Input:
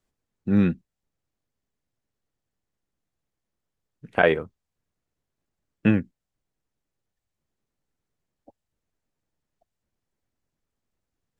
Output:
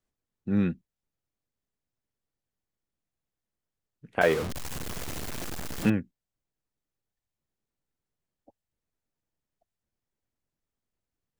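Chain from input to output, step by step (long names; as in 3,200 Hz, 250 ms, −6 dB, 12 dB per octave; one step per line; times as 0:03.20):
0:04.21–0:05.90: converter with a step at zero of −22 dBFS
level −5.5 dB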